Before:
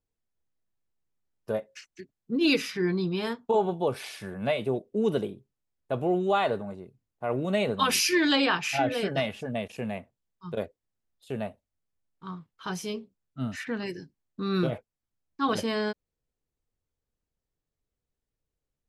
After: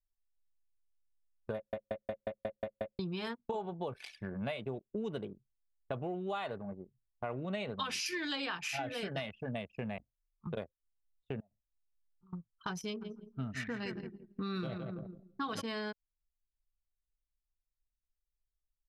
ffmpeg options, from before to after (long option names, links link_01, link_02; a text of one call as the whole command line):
ffmpeg -i in.wav -filter_complex "[0:a]asettb=1/sr,asplit=3[link_01][link_02][link_03];[link_01]atrim=end=7.364[link_04];[link_02]atrim=start=7.36:end=8.06,asetpts=PTS-STARTPTS,afade=type=in:duration=0.004:curve=qsin,afade=type=out:start_time=0.696:duration=0.004:curve=qsin,lowpass=6300[link_05];[link_03]atrim=start=8.056[link_06];[link_04][link_05]acrossfade=duration=0.004:curve1=hsin:curve2=qsin[link_07];[link_07][link_06]acrossfade=duration=0.004:curve1=qsin:curve2=hsin,asettb=1/sr,asplit=3[link_08][link_09][link_10];[link_08]atrim=end=9.974[link_11];[link_09]atrim=start=9.97:end=10.47,asetpts=PTS-STARTPTS,afade=type=in:duration=0.004:curve=qsin,afade=type=out:start_time=0.496:duration=0.004:curve=qsin,aeval=exprs='val(0)*sin(2*PI*26*n/s)':channel_layout=same[link_12];[link_10]atrim=start=10.466[link_13];[link_11][link_12]acrossfade=duration=0.004:curve1=hsin:curve2=qsin[link_14];[link_14][link_13]acrossfade=duration=0.004:curve1=qsin:curve2=hsin,asettb=1/sr,asplit=3[link_15][link_16][link_17];[link_15]atrim=end=11.404[link_18];[link_16]atrim=start=11.4:end=12.33,asetpts=PTS-STARTPTS,afade=type=in:duration=0.004:curve=qsin,afade=type=out:start_time=0.926:duration=0.004:curve=qsin,acompressor=threshold=-49dB:ratio=4:attack=3.2:release=140:knee=1:detection=peak[link_19];[link_17]atrim=start=12.326[link_20];[link_18][link_19]acrossfade=duration=0.004:curve1=hsin:curve2=qsin[link_21];[link_21][link_20]acrossfade=duration=0.004:curve1=qsin:curve2=hsin,asplit=3[link_22][link_23][link_24];[link_22]afade=type=out:start_time=13:duration=0.02[link_25];[link_23]aecho=1:1:166|332|498|664|830|996:0.376|0.195|0.102|0.0528|0.0275|0.0143,afade=type=in:start_time=13:duration=0.02,afade=type=out:start_time=15.6:duration=0.02[link_26];[link_24]afade=type=in:start_time=15.6:duration=0.02[link_27];[link_25][link_26][link_27]amix=inputs=3:normalize=0,asplit=9[link_28][link_29][link_30][link_31][link_32][link_33][link_34][link_35][link_36];[link_28]atrim=end=1.732[link_37];[link_29]atrim=start=1.548:end=1.732[link_38];[link_30]atrim=start=1.548:end=1.732[link_39];[link_31]atrim=start=1.548:end=1.732[link_40];[link_32]atrim=start=1.548:end=1.732[link_41];[link_33]atrim=start=1.548:end=1.732[link_42];[link_34]atrim=start=1.548:end=1.732[link_43];[link_35]atrim=start=1.548:end=1.732[link_44];[link_36]atrim=start=2.988[link_45];[link_37][link_38]acrossfade=duration=0.004:curve1=hsin:curve2=hsin[link_46];[link_46][link_39]acrossfade=duration=0.004:curve1=hsin:curve2=hsin[link_47];[link_47][link_40]acrossfade=duration=0.004:curve1=hsin:curve2=hsin[link_48];[link_48][link_41]acrossfade=duration=0.004:curve1=hsin:curve2=hsin[link_49];[link_49][link_42]acrossfade=duration=0.004:curve1=hsin:curve2=hsin[link_50];[link_50][link_43]acrossfade=duration=0.004:curve1=hsin:curve2=hsin[link_51];[link_51][link_44]acrossfade=duration=0.004:curve1=hsin:curve2=hsin[link_52];[link_52][link_45]acrossfade=duration=0.004:curve1=hsin:curve2=hsin,anlmdn=1.58,equalizer=frequency=380:width_type=o:width=2.2:gain=-5.5,acompressor=threshold=-39dB:ratio=6,volume=3.5dB" out.wav